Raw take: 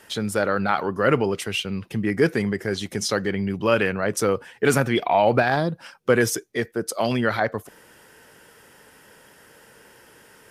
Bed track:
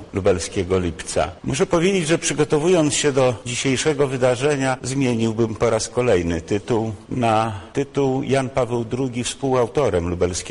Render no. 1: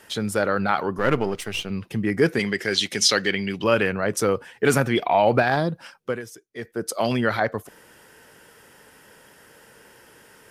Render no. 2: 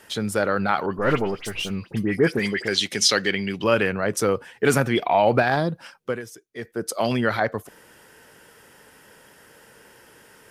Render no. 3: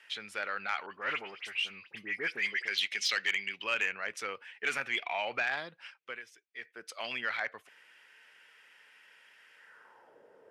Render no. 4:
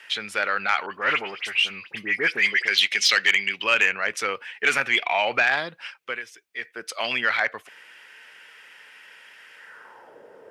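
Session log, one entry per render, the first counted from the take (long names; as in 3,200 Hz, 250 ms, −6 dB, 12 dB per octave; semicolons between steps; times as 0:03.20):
0:00.98–0:01.70: gain on one half-wave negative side −7 dB; 0:02.39–0:03.64: meter weighting curve D; 0:05.84–0:06.88: duck −17.5 dB, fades 0.38 s
0:00.86–0:02.68: all-pass dispersion highs, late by 66 ms, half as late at 2,500 Hz
band-pass filter sweep 2,400 Hz → 540 Hz, 0:09.54–0:10.20; soft clipping −19 dBFS, distortion −20 dB
level +11.5 dB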